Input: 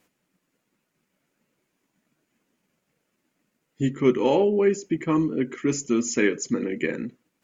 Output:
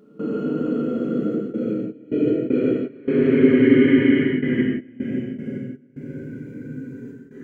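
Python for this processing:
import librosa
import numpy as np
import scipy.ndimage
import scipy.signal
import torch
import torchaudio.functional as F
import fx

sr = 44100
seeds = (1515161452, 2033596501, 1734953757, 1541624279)

y = fx.paulstretch(x, sr, seeds[0], factor=41.0, window_s=0.05, from_s=5.32)
y = fx.step_gate(y, sr, bpm=78, pattern='.xxxxxx.x..x.x.', floor_db=-24.0, edge_ms=4.5)
y = fx.rev_gated(y, sr, seeds[1], gate_ms=200, shape='flat', drr_db=-2.5)
y = F.gain(torch.from_numpy(y), 3.0).numpy()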